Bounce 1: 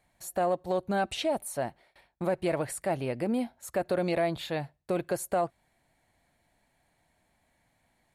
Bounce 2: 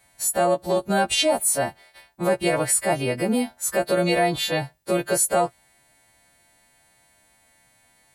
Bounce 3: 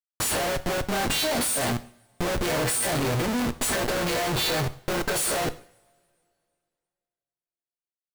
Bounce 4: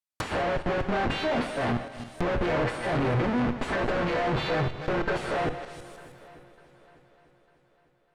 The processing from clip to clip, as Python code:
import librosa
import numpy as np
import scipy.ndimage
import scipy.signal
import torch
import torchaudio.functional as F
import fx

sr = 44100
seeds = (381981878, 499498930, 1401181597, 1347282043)

y1 = fx.freq_snap(x, sr, grid_st=2)
y1 = F.gain(torch.from_numpy(y1), 7.5).numpy()
y2 = fx.comb_fb(y1, sr, f0_hz=120.0, decay_s=0.91, harmonics='all', damping=0.0, mix_pct=70)
y2 = fx.schmitt(y2, sr, flips_db=-40.5)
y2 = fx.rev_double_slope(y2, sr, seeds[0], early_s=0.51, late_s=2.5, knee_db=-25, drr_db=12.0)
y2 = F.gain(torch.from_numpy(y2), 8.5).numpy()
y3 = fx.reverse_delay_fb(y2, sr, ms=157, feedback_pct=45, wet_db=-11.5)
y3 = fx.env_lowpass_down(y3, sr, base_hz=2200.0, full_db=-27.0)
y3 = fx.echo_heads(y3, sr, ms=300, heads='second and third', feedback_pct=42, wet_db=-23)